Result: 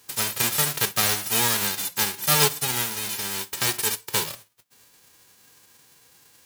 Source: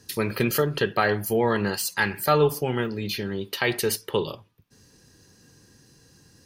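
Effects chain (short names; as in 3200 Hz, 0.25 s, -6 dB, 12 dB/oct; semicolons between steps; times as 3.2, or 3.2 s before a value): spectral whitening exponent 0.1; ending taper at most 450 dB/s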